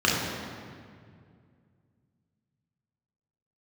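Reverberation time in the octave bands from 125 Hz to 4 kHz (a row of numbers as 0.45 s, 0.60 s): 3.3 s, 2.8 s, 2.3 s, 2.0 s, 1.8 s, 1.4 s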